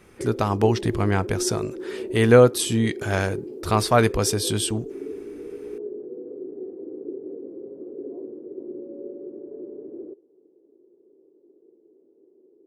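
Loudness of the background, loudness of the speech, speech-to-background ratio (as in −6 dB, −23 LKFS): −35.0 LKFS, −21.5 LKFS, 13.5 dB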